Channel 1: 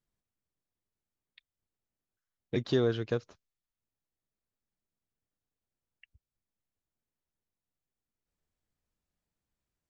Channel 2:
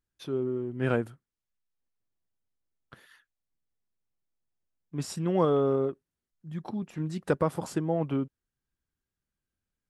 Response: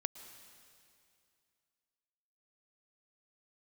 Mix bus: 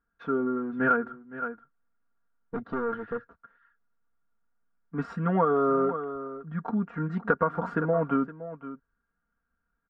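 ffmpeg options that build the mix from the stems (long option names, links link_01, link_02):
-filter_complex "[0:a]tiltshelf=frequency=730:gain=6,asoftclip=type=tanh:threshold=-24.5dB,volume=-5.5dB[link_01];[1:a]volume=1dB,asplit=2[link_02][link_03];[link_03]volume=-16dB,aecho=0:1:515:1[link_04];[link_01][link_02][link_04]amix=inputs=3:normalize=0,lowpass=frequency=1400:width_type=q:width=6.6,aecho=1:1:4.3:0.91,acompressor=threshold=-20dB:ratio=6"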